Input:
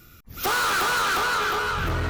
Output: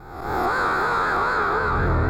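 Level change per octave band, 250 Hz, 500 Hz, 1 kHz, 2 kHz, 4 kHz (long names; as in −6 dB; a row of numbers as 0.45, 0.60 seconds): +6.5, +5.5, +3.0, +0.5, −11.0 decibels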